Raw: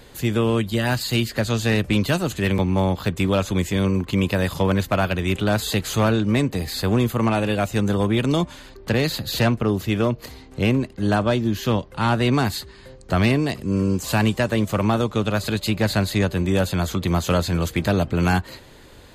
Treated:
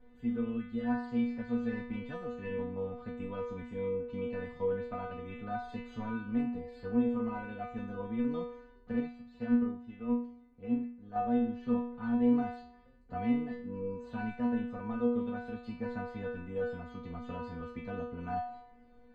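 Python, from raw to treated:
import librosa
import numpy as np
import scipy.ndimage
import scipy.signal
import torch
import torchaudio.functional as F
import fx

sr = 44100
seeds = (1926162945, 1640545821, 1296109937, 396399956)

y = scipy.signal.sosfilt(scipy.signal.butter(2, 1500.0, 'lowpass', fs=sr, output='sos'), x)
y = fx.low_shelf(y, sr, hz=210.0, db=9.5)
y = fx.stiff_resonator(y, sr, f0_hz=240.0, decay_s=0.69, stiffness=0.002)
y = fx.upward_expand(y, sr, threshold_db=-42.0, expansion=1.5, at=(9.0, 11.16))
y = y * librosa.db_to_amplitude(1.5)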